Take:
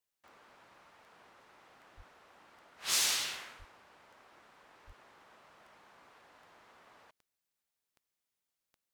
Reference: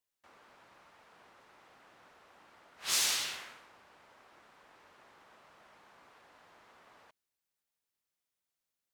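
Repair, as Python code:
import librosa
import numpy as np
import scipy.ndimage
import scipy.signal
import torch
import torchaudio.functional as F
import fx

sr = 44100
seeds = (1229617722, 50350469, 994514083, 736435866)

y = fx.fix_declick_ar(x, sr, threshold=10.0)
y = fx.highpass(y, sr, hz=140.0, slope=24, at=(1.96, 2.08), fade=0.02)
y = fx.highpass(y, sr, hz=140.0, slope=24, at=(3.58, 3.7), fade=0.02)
y = fx.highpass(y, sr, hz=140.0, slope=24, at=(4.86, 4.98), fade=0.02)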